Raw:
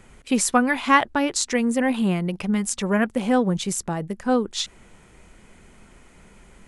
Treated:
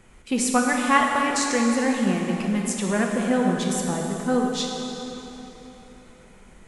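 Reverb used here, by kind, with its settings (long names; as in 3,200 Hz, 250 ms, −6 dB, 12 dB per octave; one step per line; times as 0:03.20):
dense smooth reverb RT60 3.6 s, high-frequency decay 0.75×, DRR 0 dB
level −3.5 dB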